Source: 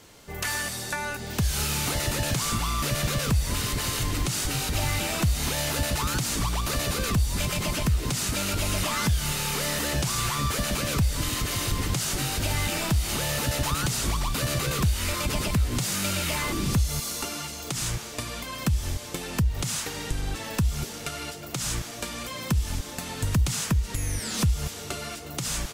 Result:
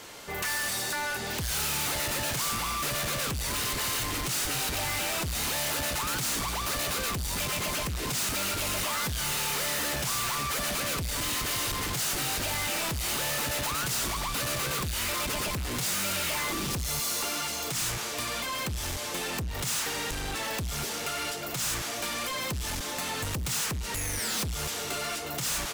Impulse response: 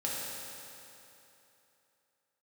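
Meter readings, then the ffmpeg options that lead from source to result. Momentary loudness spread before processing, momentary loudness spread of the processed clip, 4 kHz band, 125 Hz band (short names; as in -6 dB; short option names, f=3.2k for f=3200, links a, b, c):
7 LU, 4 LU, -0.5 dB, -10.0 dB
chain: -filter_complex "[0:a]asplit=2[a][b];[b]highpass=f=720:p=1,volume=13dB,asoftclip=type=tanh:threshold=-14dB[c];[a][c]amix=inputs=2:normalize=0,lowpass=f=2.8k:p=1,volume=-6dB,asoftclip=type=tanh:threshold=-32dB,highshelf=f=8.9k:g=11.5,volume=2dB"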